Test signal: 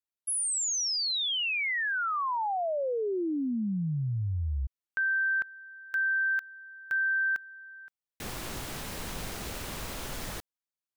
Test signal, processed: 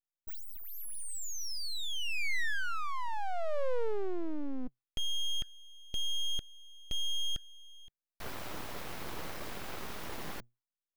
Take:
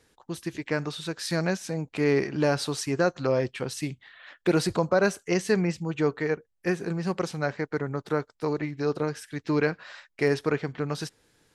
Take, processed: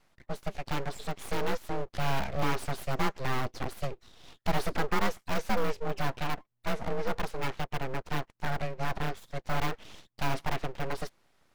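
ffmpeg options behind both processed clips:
ffmpeg -i in.wav -filter_complex "[0:a]afreqshift=60,asplit=2[link_01][link_02];[link_02]aeval=exprs='(mod(10*val(0)+1,2)-1)/10':channel_layout=same,volume=-8.5dB[link_03];[link_01][link_03]amix=inputs=2:normalize=0,equalizer=frequency=250:width_type=o:width=1:gain=7,equalizer=frequency=1000:width_type=o:width=1:gain=6,equalizer=frequency=8000:width_type=o:width=1:gain=-8,aeval=exprs='abs(val(0))':channel_layout=same,volume=-6.5dB" out.wav

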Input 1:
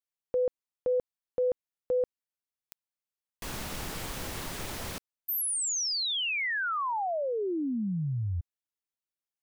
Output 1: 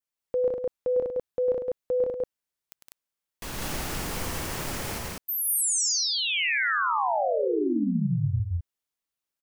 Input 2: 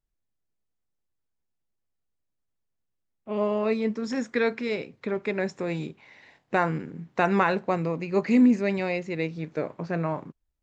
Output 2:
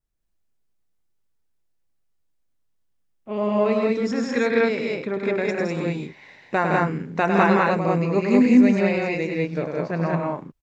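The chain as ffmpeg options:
ffmpeg -i in.wav -af "adynamicequalizer=threshold=0.00251:dfrequency=3700:dqfactor=3.3:tfrequency=3700:tqfactor=3.3:attack=5:release=100:ratio=0.375:range=3:mode=cutabove:tftype=bell,aecho=1:1:102|163.3|198.3:0.501|0.631|0.891,volume=1.5dB" out.wav

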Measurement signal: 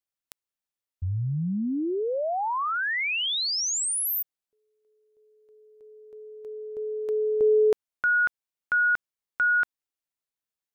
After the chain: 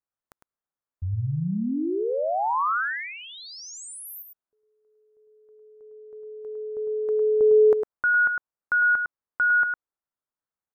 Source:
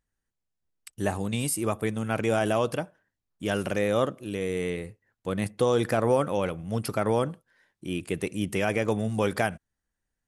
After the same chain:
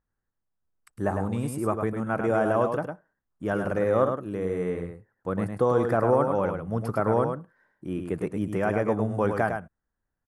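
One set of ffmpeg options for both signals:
ffmpeg -i in.wav -filter_complex "[0:a]highshelf=frequency=2000:width_type=q:width=1.5:gain=-13,asplit=2[link_01][link_02];[link_02]aecho=0:1:105:0.501[link_03];[link_01][link_03]amix=inputs=2:normalize=0" out.wav

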